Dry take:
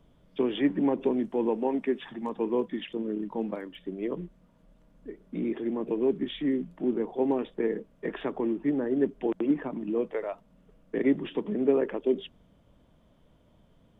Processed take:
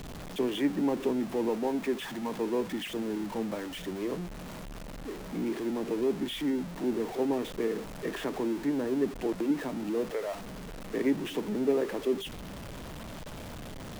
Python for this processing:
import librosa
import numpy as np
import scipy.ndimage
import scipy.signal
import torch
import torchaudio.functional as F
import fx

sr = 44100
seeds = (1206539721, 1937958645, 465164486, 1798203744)

y = x + 0.5 * 10.0 ** (-32.0 / 20.0) * np.sign(x)
y = F.gain(torch.from_numpy(y), -4.0).numpy()